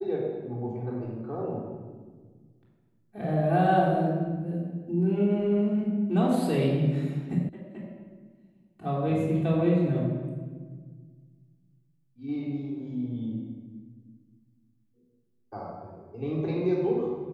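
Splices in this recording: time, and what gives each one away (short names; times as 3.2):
7.49 sound cut off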